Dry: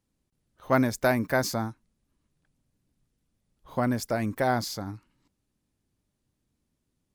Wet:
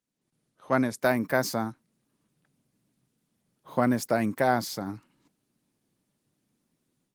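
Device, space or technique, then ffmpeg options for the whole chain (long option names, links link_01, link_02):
video call: -af "highpass=frequency=130:width=0.5412,highpass=frequency=130:width=1.3066,dynaudnorm=framelen=150:gausssize=3:maxgain=13dB,volume=-7.5dB" -ar 48000 -c:a libopus -b:a 24k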